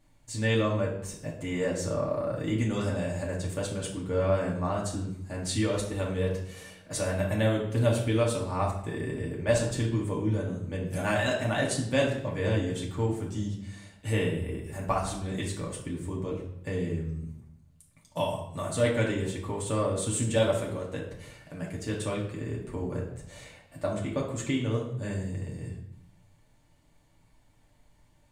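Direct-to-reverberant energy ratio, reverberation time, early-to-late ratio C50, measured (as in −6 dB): −4.5 dB, 0.75 s, 5.5 dB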